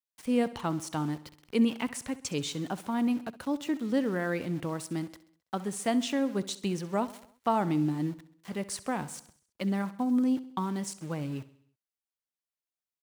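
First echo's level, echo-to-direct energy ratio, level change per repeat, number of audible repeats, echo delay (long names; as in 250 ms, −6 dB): −17.0 dB, −15.5 dB, −5.5 dB, 4, 66 ms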